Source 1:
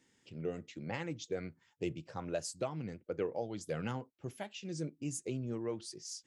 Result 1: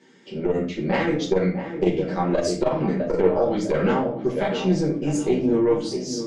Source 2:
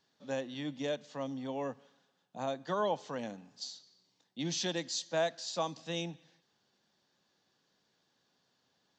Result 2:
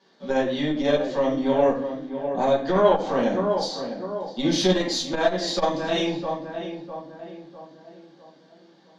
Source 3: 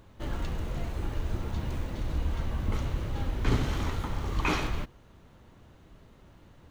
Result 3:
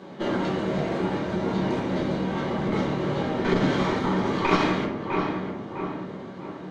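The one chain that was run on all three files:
tape wow and flutter 28 cents
on a send: feedback echo with a low-pass in the loop 653 ms, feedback 46%, low-pass 1,700 Hz, level −10.5 dB
on the sum: downward compressor 2 to 1, threshold −35 dBFS
high-pass filter 170 Hz 24 dB per octave
high-frequency loss of the air 120 metres
notch filter 2,600 Hz, Q 16
harmonic generator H 2 −12 dB, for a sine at −23 dBFS
rectangular room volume 41 cubic metres, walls mixed, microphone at 1.2 metres
saturating transformer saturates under 200 Hz
normalise the peak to −6 dBFS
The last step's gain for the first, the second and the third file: +12.5, +11.0, +10.5 decibels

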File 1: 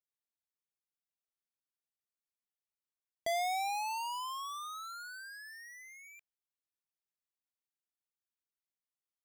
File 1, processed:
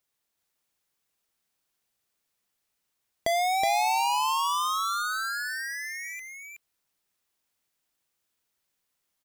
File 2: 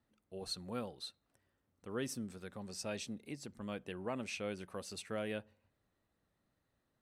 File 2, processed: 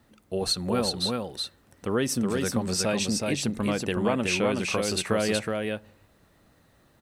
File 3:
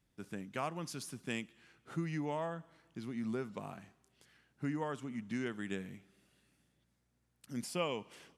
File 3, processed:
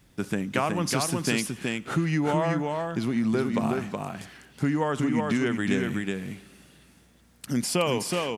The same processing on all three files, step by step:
downward compressor 2.5 to 1, threshold −43 dBFS
on a send: single-tap delay 371 ms −3.5 dB
on the sum: loudness normalisation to −27 LKFS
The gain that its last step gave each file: +14.0, +19.0, +18.5 decibels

